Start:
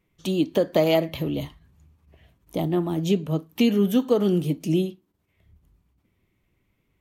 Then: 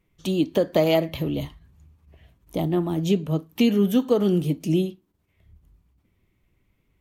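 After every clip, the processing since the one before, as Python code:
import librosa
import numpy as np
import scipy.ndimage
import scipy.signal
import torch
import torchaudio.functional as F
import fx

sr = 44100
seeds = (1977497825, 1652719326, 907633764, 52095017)

y = fx.low_shelf(x, sr, hz=67.0, db=7.5)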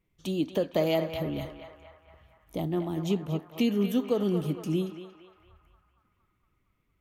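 y = fx.echo_banded(x, sr, ms=231, feedback_pct=70, hz=1300.0, wet_db=-5.5)
y = y * librosa.db_to_amplitude(-6.5)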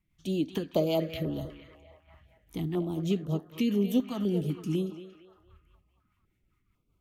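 y = fx.rotary(x, sr, hz=5.0)
y = fx.filter_held_notch(y, sr, hz=4.0, low_hz=460.0, high_hz=2300.0)
y = y * librosa.db_to_amplitude(1.5)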